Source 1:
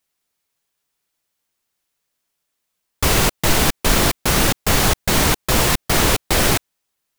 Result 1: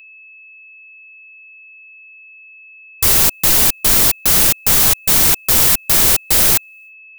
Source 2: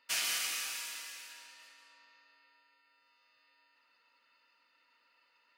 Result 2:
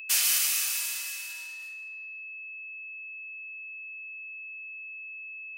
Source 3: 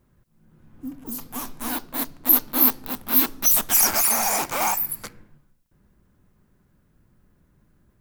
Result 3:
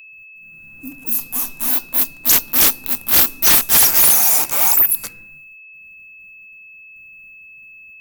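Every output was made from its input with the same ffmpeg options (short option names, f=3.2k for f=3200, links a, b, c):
-af "agate=range=-33dB:threshold=-53dB:ratio=3:detection=peak,aeval=exprs='val(0)+0.00794*sin(2*PI*2600*n/s)':c=same,aemphasis=mode=production:type=75kf,acontrast=66,volume=-7dB"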